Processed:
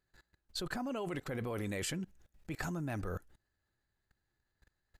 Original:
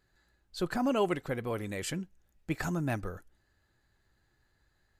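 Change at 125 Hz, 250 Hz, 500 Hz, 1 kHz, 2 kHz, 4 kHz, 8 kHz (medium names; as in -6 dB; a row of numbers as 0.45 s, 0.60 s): -4.0 dB, -6.0 dB, -7.5 dB, -8.0 dB, -4.0 dB, -1.0 dB, -1.0 dB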